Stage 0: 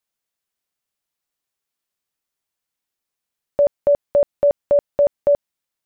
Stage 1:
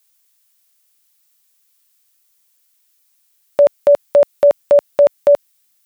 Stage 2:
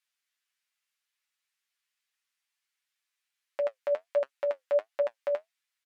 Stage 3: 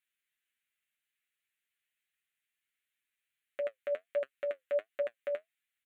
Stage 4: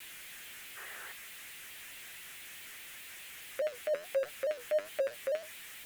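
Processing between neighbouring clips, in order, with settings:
tilt +4 dB/oct; gain +8.5 dB
comb 7 ms, depth 45%; flange 1.4 Hz, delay 7 ms, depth 5 ms, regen +51%; band-pass 1900 Hz, Q 1.2; gain -4.5 dB
fixed phaser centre 2200 Hz, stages 4
zero-crossing step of -41 dBFS; spectral gain 0.77–1.12, 340–2000 Hz +10 dB; shaped vibrato square 4.7 Hz, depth 100 cents

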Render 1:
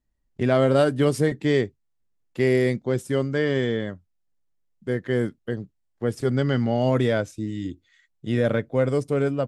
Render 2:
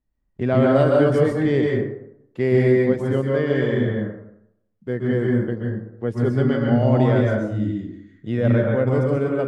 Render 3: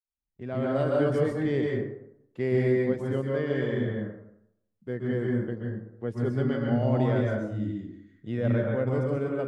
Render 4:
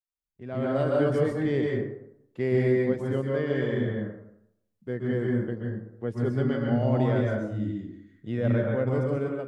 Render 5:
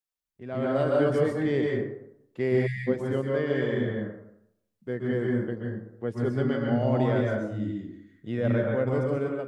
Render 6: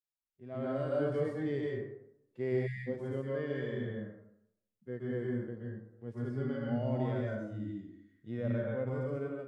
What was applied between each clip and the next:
LPF 1800 Hz 6 dB/oct; plate-style reverb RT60 0.77 s, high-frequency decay 0.5×, pre-delay 0.115 s, DRR -1.5 dB
opening faded in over 1.07 s; gain -7.5 dB
AGC gain up to 8 dB; gain -7 dB
spectral delete 2.66–2.87, 200–1600 Hz; low shelf 180 Hz -5 dB; gain +1.5 dB
harmonic-percussive split percussive -15 dB; gain -7.5 dB

